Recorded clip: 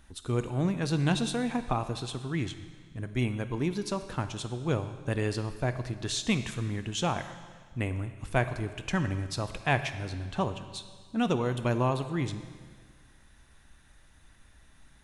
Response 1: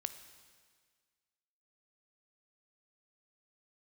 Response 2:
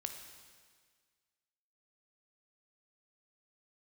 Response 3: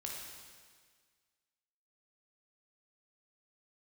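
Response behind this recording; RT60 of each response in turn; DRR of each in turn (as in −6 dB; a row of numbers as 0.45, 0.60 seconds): 1; 1.7, 1.7, 1.7 seconds; 10.0, 5.0, −2.0 decibels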